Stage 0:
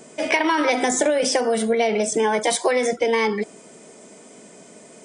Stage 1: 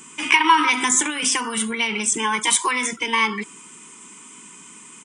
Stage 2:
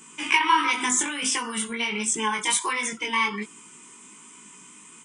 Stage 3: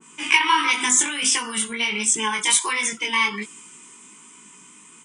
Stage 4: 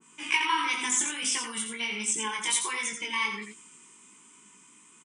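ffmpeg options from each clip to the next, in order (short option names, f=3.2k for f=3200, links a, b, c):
-af "firequalizer=gain_entry='entry(320,0);entry(620,-25);entry(990,12);entry(1700,3);entry(2800,13);entry(4400,-1);entry(7100,10)':delay=0.05:min_phase=1,volume=-2.5dB"
-af "flanger=delay=17.5:depth=3.8:speed=1.4,volume=-1.5dB"
-af "adynamicequalizer=threshold=0.0158:dfrequency=1800:dqfactor=0.7:tfrequency=1800:tqfactor=0.7:attack=5:release=100:ratio=0.375:range=3:mode=boostabove:tftype=highshelf"
-af "aecho=1:1:86:0.447,volume=-9dB"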